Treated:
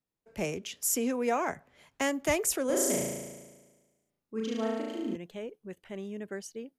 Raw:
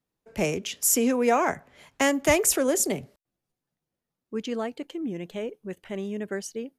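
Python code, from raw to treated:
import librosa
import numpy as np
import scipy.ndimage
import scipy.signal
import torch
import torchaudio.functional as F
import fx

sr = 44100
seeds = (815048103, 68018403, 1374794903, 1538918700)

y = fx.room_flutter(x, sr, wall_m=6.2, rt60_s=1.3, at=(2.66, 5.16))
y = F.gain(torch.from_numpy(y), -7.0).numpy()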